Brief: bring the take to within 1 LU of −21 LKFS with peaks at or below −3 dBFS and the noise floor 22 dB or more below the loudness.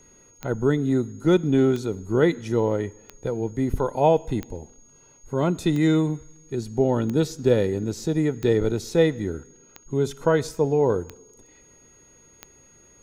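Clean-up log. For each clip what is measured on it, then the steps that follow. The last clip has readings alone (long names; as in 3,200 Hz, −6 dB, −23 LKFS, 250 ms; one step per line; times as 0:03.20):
number of clicks 10; interfering tone 6,600 Hz; level of the tone −53 dBFS; integrated loudness −23.5 LKFS; sample peak −6.5 dBFS; target loudness −21.0 LKFS
→ click removal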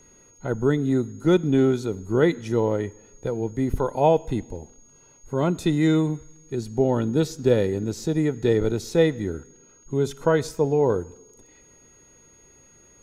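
number of clicks 0; interfering tone 6,600 Hz; level of the tone −53 dBFS
→ notch filter 6,600 Hz, Q 30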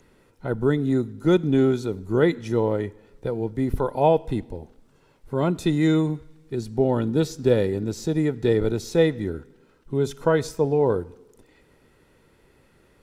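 interfering tone none found; integrated loudness −23.5 LKFS; sample peak −6.5 dBFS; target loudness −21.0 LKFS
→ level +2.5 dB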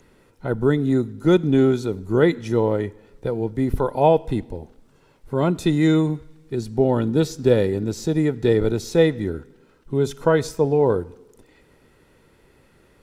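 integrated loudness −21.0 LKFS; sample peak −4.0 dBFS; background noise floor −57 dBFS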